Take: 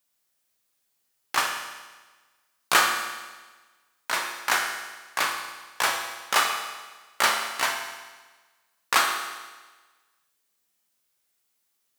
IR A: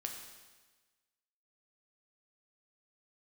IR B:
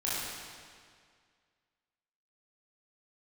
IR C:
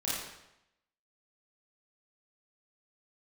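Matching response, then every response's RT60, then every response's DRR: A; 1.3, 2.0, 0.85 seconds; 2.0, −9.0, −8.5 decibels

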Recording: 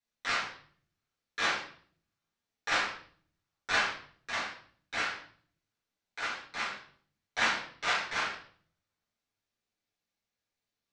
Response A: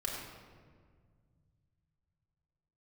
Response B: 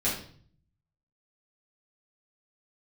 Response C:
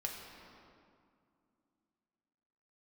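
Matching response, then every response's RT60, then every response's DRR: B; 1.8, 0.50, 2.4 seconds; −3.5, −9.0, −0.5 decibels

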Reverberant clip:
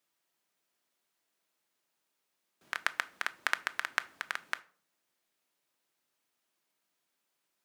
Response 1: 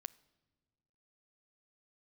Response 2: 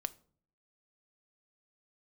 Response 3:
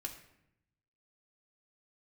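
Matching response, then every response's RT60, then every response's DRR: 2; 1.5, 0.50, 0.80 seconds; 18.5, 11.5, 0.0 decibels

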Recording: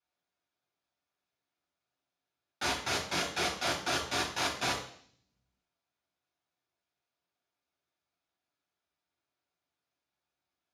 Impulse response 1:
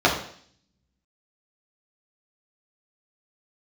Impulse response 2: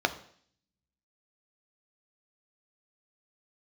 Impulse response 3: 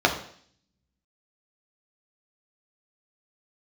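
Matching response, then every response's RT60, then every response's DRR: 1; 0.55, 0.55, 0.55 seconds; −4.5, 7.5, 1.0 decibels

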